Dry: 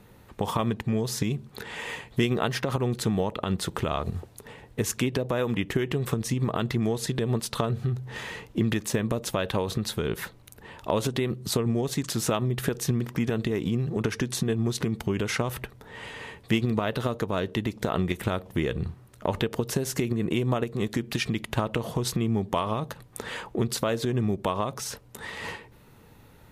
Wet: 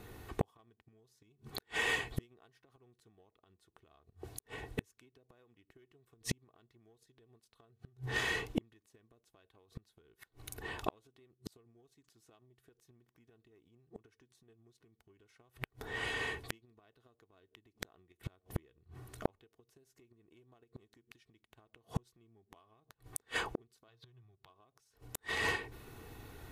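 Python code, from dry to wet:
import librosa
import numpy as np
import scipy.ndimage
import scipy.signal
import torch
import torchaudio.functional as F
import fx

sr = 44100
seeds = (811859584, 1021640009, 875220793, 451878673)

y = x + 0.54 * np.pad(x, (int(2.7 * sr / 1000.0), 0))[:len(x)]
y = fx.cheby_harmonics(y, sr, harmonics=(6, 7), levels_db=(-45, -29), full_scale_db=-9.0)
y = fx.gate_flip(y, sr, shuts_db=-23.0, range_db=-42)
y = fx.graphic_eq(y, sr, hz=(125, 250, 500, 1000, 4000, 8000), db=(10, -11, -4, 5, 9, -10), at=(23.88, 24.5))
y = F.gain(torch.from_numpy(y), 3.5).numpy()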